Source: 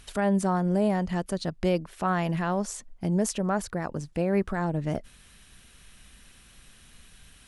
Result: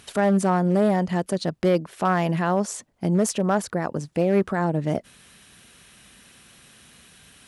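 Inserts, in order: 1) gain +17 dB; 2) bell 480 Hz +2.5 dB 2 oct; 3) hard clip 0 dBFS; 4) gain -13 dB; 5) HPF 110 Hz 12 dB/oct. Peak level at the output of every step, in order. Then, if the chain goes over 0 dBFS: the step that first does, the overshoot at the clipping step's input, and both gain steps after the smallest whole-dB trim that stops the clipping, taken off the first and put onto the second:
+5.5, +5.5, 0.0, -13.0, -10.0 dBFS; step 1, 5.5 dB; step 1 +11 dB, step 4 -7 dB

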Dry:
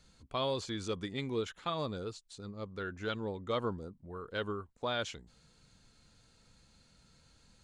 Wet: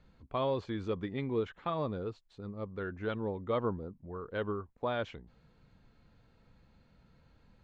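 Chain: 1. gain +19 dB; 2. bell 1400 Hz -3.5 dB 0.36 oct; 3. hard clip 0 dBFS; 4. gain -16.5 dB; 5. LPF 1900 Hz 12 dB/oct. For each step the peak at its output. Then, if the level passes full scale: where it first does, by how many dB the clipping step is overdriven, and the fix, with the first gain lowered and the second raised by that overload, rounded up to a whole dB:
-2.5, -3.0, -3.0, -19.5, -21.5 dBFS; no overload

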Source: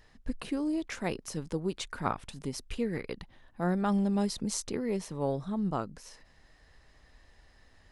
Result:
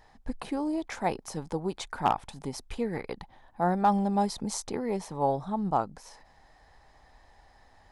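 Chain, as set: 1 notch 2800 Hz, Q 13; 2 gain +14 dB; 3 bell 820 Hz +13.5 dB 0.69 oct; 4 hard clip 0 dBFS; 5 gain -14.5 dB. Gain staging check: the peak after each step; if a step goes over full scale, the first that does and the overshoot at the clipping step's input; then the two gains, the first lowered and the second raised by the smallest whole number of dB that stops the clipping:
-14.5, -0.5, +6.5, 0.0, -14.5 dBFS; step 3, 6.5 dB; step 2 +7 dB, step 5 -7.5 dB

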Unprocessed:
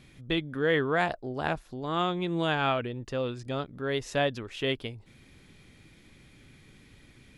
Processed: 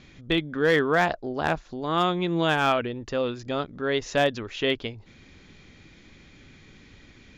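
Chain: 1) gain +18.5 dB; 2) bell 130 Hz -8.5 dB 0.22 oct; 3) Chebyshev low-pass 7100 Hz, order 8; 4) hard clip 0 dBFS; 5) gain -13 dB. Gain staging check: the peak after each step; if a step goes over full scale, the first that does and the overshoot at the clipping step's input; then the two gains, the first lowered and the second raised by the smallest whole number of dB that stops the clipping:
+5.0, +5.5, +5.5, 0.0, -13.0 dBFS; step 1, 5.5 dB; step 1 +12.5 dB, step 5 -7 dB

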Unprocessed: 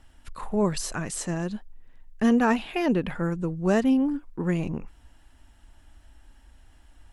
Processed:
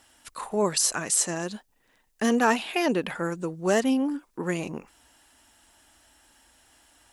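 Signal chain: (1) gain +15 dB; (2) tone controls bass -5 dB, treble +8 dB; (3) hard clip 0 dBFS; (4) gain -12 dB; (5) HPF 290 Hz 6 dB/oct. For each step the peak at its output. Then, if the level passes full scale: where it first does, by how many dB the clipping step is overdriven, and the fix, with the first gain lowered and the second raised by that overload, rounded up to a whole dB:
+5.0, +4.5, 0.0, -12.0, -9.5 dBFS; step 1, 4.5 dB; step 1 +10 dB, step 4 -7 dB

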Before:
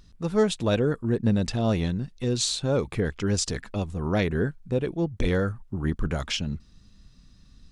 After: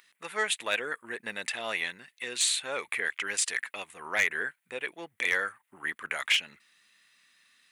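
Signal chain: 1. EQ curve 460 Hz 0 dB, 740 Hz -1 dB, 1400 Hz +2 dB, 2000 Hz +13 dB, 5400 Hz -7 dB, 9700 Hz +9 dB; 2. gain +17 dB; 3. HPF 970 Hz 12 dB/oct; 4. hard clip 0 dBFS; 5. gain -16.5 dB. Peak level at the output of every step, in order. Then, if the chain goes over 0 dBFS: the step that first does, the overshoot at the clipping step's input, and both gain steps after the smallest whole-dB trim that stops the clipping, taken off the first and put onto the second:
-7.5, +9.5, +9.0, 0.0, -16.5 dBFS; step 2, 9.0 dB; step 2 +8 dB, step 5 -7.5 dB

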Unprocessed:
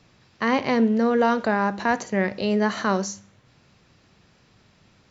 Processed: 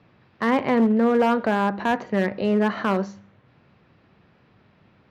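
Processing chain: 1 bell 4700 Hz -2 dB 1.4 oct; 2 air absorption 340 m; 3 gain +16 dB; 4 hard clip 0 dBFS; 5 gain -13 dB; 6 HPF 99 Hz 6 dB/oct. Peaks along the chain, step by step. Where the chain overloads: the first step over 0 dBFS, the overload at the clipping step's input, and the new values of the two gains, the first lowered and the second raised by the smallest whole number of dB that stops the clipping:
-8.0, -9.5, +6.5, 0.0, -13.0, -10.5 dBFS; step 3, 6.5 dB; step 3 +9 dB, step 5 -6 dB

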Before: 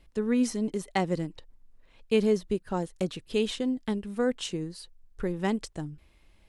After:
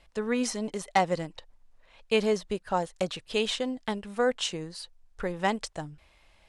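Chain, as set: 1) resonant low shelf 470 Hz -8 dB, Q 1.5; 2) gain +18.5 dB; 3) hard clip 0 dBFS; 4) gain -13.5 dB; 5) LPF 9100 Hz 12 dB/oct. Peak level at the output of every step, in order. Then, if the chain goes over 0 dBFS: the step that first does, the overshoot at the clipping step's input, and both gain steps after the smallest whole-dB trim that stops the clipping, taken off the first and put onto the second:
-12.5, +6.0, 0.0, -13.5, -13.0 dBFS; step 2, 6.0 dB; step 2 +12.5 dB, step 4 -7.5 dB

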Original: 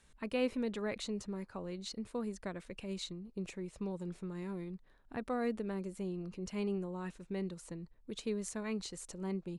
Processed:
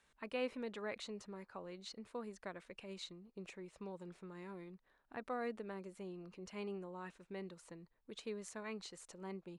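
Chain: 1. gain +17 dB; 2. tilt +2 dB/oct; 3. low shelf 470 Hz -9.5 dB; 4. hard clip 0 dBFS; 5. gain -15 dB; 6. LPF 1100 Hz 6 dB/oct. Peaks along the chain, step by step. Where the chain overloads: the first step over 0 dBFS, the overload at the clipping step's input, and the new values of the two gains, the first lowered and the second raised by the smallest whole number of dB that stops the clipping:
-5.0, -1.5, -1.5, -1.5, -16.5, -28.0 dBFS; no overload

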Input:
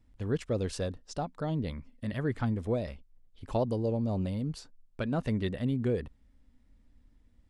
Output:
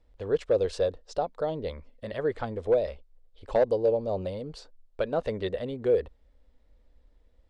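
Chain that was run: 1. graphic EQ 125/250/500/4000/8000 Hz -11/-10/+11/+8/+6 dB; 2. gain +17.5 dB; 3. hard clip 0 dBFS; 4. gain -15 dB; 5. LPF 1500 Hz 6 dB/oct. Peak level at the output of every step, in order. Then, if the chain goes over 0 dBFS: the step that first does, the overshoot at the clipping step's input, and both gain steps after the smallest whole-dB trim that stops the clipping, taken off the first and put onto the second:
-12.5, +5.0, 0.0, -15.0, -15.0 dBFS; step 2, 5.0 dB; step 2 +12.5 dB, step 4 -10 dB

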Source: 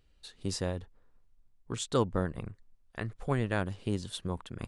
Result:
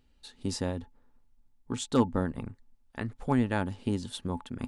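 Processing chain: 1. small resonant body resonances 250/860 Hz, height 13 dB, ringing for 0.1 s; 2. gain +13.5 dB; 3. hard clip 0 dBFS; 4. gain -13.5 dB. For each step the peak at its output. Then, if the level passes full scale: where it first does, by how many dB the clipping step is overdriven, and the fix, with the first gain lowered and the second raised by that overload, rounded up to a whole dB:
-10.0, +3.5, 0.0, -13.5 dBFS; step 2, 3.5 dB; step 2 +9.5 dB, step 4 -9.5 dB

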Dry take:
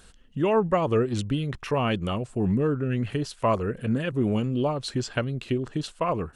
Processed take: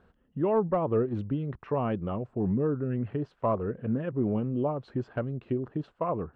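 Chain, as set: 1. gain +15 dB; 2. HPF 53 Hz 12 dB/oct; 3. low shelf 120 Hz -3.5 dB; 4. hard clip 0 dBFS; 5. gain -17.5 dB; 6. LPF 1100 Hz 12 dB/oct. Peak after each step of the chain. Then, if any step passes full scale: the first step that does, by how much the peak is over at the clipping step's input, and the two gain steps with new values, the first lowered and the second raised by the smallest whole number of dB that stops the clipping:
+4.5, +5.5, +6.0, 0.0, -17.5, -17.0 dBFS; step 1, 6.0 dB; step 1 +9 dB, step 5 -11.5 dB

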